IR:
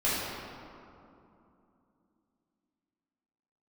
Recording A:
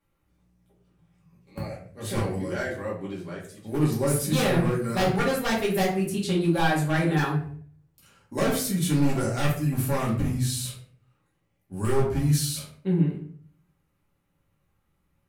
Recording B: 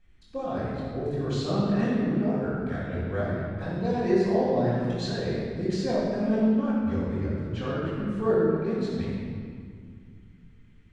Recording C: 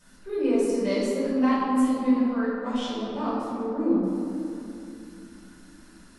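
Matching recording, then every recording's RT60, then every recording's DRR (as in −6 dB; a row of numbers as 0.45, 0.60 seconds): C; 0.50, 2.1, 2.8 seconds; −6.0, −10.0, −10.5 decibels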